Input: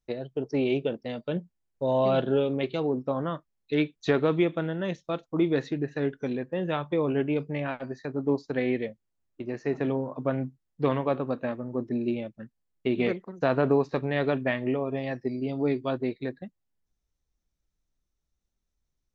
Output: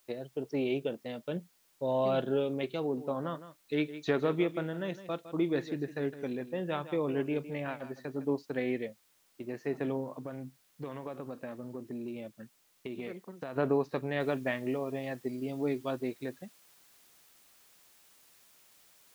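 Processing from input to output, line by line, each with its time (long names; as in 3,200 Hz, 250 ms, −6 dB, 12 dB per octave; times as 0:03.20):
0:02.81–0:08.25: single-tap delay 160 ms −13.5 dB
0:10.12–0:13.56: downward compressor, threshold −30 dBFS
0:14.20: noise floor change −64 dB −57 dB
whole clip: low-shelf EQ 75 Hz −10 dB; level −5 dB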